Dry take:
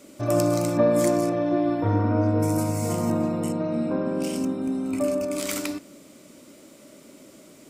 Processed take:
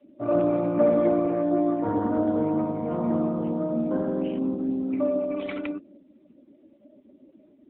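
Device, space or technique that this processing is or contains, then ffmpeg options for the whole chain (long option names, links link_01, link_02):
mobile call with aggressive noise cancelling: -af "highpass=frequency=150:width=0.5412,highpass=frequency=150:width=1.3066,afftdn=noise_reduction=19:noise_floor=-39" -ar 8000 -c:a libopencore_amrnb -b:a 10200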